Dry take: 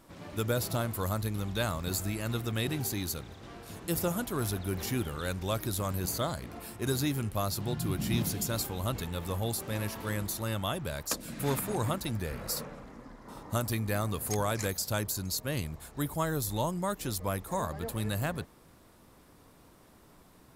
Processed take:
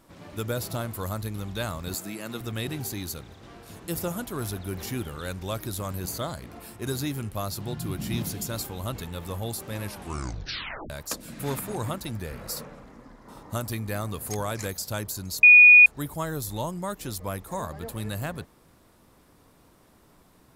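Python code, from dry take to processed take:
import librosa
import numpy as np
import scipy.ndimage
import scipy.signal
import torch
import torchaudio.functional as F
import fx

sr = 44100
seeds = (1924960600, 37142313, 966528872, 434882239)

y = fx.highpass(x, sr, hz=160.0, slope=24, at=(1.94, 2.41))
y = fx.edit(y, sr, fx.tape_stop(start_s=9.84, length_s=1.06),
    fx.bleep(start_s=15.43, length_s=0.43, hz=2460.0, db=-8.5), tone=tone)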